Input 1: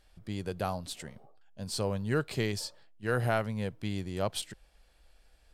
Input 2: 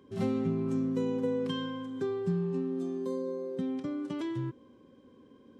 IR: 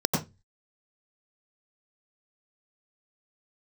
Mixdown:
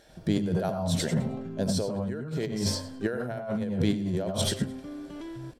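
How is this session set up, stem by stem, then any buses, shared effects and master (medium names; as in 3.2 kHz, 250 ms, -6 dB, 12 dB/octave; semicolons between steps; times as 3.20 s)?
-2.5 dB, 0.00 s, send -5.5 dB, echo send -5 dB, small resonant body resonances 650/1400 Hz, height 7 dB, ringing for 40 ms
-3.0 dB, 1.00 s, no send, no echo send, peak limiter -28.5 dBFS, peak gain reduction 8.5 dB; auto duck -8 dB, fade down 1.85 s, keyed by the first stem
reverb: on, RT60 0.20 s, pre-delay 86 ms
echo: feedback delay 104 ms, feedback 26%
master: compressor with a negative ratio -29 dBFS, ratio -1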